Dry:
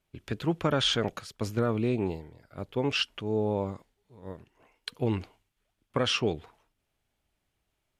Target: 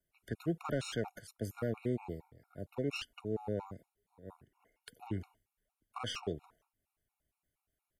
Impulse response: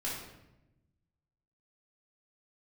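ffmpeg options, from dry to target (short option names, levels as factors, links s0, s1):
-filter_complex "[0:a]firequalizer=gain_entry='entry(1800,0);entry(3600,-6);entry(11000,8)':delay=0.05:min_phase=1,acrossover=split=120|520|4200[s0][s1][s2][s3];[s2]aeval=exprs='clip(val(0),-1,0.0237)':c=same[s4];[s0][s1][s4][s3]amix=inputs=4:normalize=0,afftfilt=real='re*gt(sin(2*PI*4.3*pts/sr)*(1-2*mod(floor(b*sr/1024/730),2)),0)':imag='im*gt(sin(2*PI*4.3*pts/sr)*(1-2*mod(floor(b*sr/1024/730),2)),0)':win_size=1024:overlap=0.75,volume=0.501"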